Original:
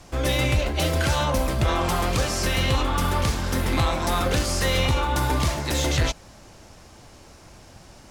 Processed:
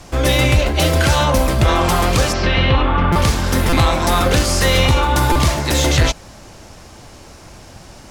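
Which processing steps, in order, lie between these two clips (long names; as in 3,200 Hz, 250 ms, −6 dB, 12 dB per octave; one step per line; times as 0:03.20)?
0:02.32–0:03.13: low-pass filter 4,600 Hz → 2,500 Hz 24 dB per octave
buffer that repeats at 0:03.12/0:03.69/0:05.32, samples 256, times 5
level +8 dB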